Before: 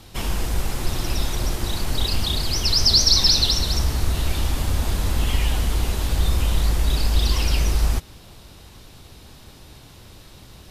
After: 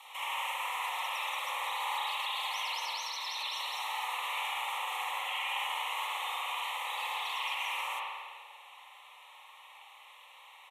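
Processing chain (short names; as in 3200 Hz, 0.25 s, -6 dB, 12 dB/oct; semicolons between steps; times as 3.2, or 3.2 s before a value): fixed phaser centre 1000 Hz, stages 8; vocal rider 0.5 s; steep high-pass 660 Hz 48 dB/oct; limiter -29 dBFS, peak gain reduction 11.5 dB; LPF 3500 Hz 6 dB/oct; notch 1600 Hz, Q 5.7; feedback echo 0.23 s, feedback 25%, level -18.5 dB; spring tank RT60 1.6 s, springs 48 ms, chirp 65 ms, DRR -5.5 dB; Opus 96 kbps 48000 Hz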